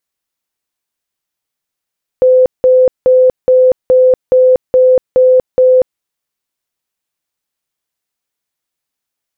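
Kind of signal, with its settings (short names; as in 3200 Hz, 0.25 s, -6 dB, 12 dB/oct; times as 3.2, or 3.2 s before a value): tone bursts 511 Hz, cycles 122, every 0.42 s, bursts 9, -4 dBFS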